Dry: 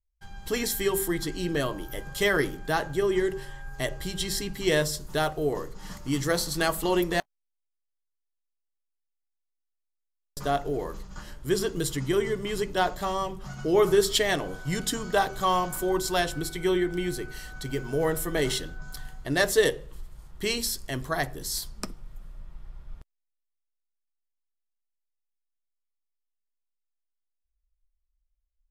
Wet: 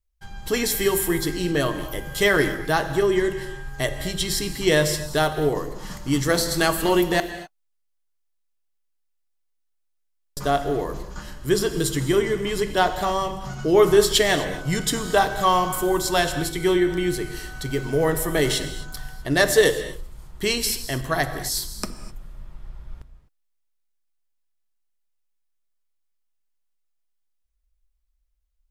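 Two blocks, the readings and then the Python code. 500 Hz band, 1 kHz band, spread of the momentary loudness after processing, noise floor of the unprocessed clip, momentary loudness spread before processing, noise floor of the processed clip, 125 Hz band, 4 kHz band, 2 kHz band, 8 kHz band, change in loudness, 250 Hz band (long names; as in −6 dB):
+5.5 dB, +5.5 dB, 14 LU, −81 dBFS, 14 LU, −71 dBFS, +5.5 dB, +5.5 dB, +5.5 dB, +5.5 dB, +5.5 dB, +5.5 dB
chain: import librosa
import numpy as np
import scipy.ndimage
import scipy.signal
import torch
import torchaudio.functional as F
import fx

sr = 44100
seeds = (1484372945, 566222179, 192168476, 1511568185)

y = fx.rev_gated(x, sr, seeds[0], gate_ms=280, shape='flat', drr_db=9.5)
y = F.gain(torch.from_numpy(y), 5.0).numpy()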